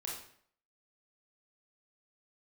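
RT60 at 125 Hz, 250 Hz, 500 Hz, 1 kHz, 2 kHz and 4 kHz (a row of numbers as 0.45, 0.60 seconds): 0.60, 0.60, 0.60, 0.60, 0.55, 0.50 seconds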